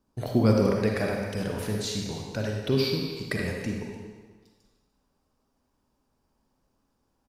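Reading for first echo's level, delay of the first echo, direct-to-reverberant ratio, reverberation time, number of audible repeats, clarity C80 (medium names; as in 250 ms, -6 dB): -16.5 dB, 297 ms, 0.0 dB, 1.5 s, 1, 2.5 dB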